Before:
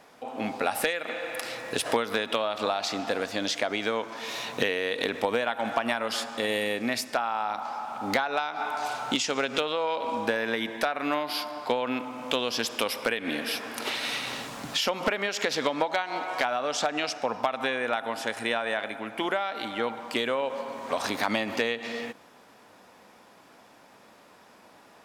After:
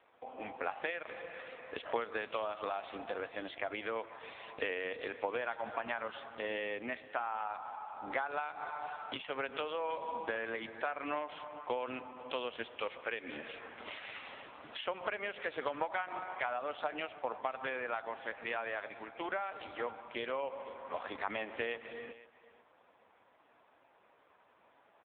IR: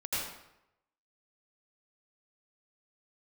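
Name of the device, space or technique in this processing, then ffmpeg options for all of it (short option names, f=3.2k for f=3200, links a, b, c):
satellite phone: -filter_complex "[0:a]asettb=1/sr,asplit=3[a][b][c];[a]atrim=end=15.534[d];[b]atrim=start=15.53:end=16.23,asetpts=PTS-STARTPTS,afade=t=in:d=0.004:c=qsin,afade=t=out:st=0.696:d=0.004:c=qsin,equalizer=f=1.3k:t=o:w=0.27:g=4.5[e];[c]atrim=start=16.226[f];[d][e]acrossfade=d=0.004:c1=hsin:c2=qsin[g];[g][f]acrossfade=d=0.004:c1=qsin:c2=hsin,highpass=330,lowpass=3.2k,aecho=1:1:496:0.126,volume=-7.5dB" -ar 8000 -c:a libopencore_amrnb -b:a 5900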